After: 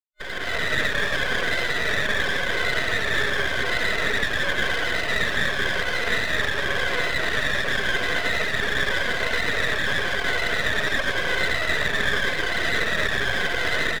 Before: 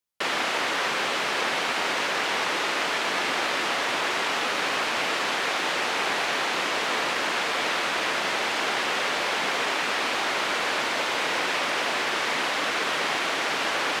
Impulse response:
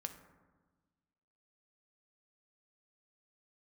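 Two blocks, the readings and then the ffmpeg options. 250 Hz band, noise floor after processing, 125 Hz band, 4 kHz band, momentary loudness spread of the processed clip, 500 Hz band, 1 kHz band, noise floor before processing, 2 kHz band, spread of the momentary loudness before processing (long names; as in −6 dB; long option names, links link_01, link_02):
+1.5 dB, −27 dBFS, +14.0 dB, 0.0 dB, 1 LU, +1.5 dB, −5.0 dB, −27 dBFS, +4.5 dB, 0 LU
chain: -filter_complex "[0:a]afftfilt=real='re*pow(10,7/40*sin(2*PI*(1.8*log(max(b,1)*sr/1024/100)/log(2)-(-0.91)*(pts-256)/sr)))':imag='im*pow(10,7/40*sin(2*PI*(1.8*log(max(b,1)*sr/1024/100)/log(2)-(-0.91)*(pts-256)/sr)))':win_size=1024:overlap=0.75,asplit=2[link_01][link_02];[link_02]adelay=14,volume=-9.5dB[link_03];[link_01][link_03]amix=inputs=2:normalize=0,afreqshift=55,afftfilt=real='re*gte(hypot(re,im),0.0794)':imag='im*gte(hypot(re,im),0.0794)':win_size=1024:overlap=0.75,bandreject=frequency=1200:width=5.2,acrossover=split=460[link_04][link_05];[link_04]acontrast=45[link_06];[link_05]alimiter=limit=-23dB:level=0:latency=1:release=154[link_07];[link_06][link_07]amix=inputs=2:normalize=0,superequalizer=6b=0.398:9b=0.282:11b=3.16:12b=0.501,aresample=11025,aresample=44100,aeval=exprs='max(val(0),0)':channel_layout=same,dynaudnorm=framelen=360:gausssize=3:maxgain=13.5dB,volume=-5dB"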